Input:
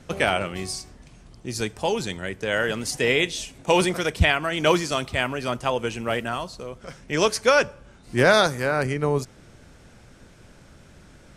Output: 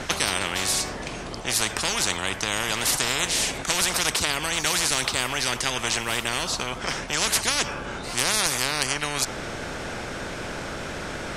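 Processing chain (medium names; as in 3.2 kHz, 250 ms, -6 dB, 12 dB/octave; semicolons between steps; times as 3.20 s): treble shelf 5.9 kHz -9 dB; spectrum-flattening compressor 10:1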